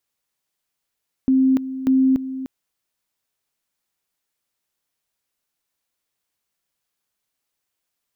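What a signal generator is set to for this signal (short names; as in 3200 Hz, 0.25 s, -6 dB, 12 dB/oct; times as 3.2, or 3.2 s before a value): two-level tone 263 Hz -12.5 dBFS, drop 13 dB, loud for 0.29 s, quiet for 0.30 s, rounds 2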